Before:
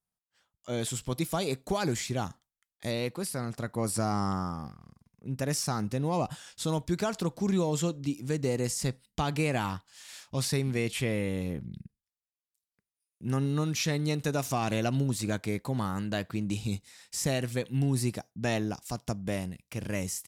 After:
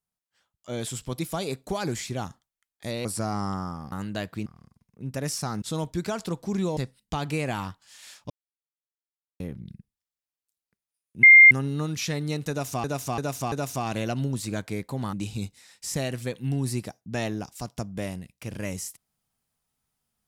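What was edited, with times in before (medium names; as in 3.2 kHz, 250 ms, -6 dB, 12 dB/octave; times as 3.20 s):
3.05–3.84 s: delete
5.87–6.56 s: delete
7.71–8.83 s: delete
10.36–11.46 s: mute
13.29 s: add tone 2.11 kHz -7.5 dBFS 0.28 s
14.28–14.62 s: loop, 4 plays
15.89–16.43 s: move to 4.71 s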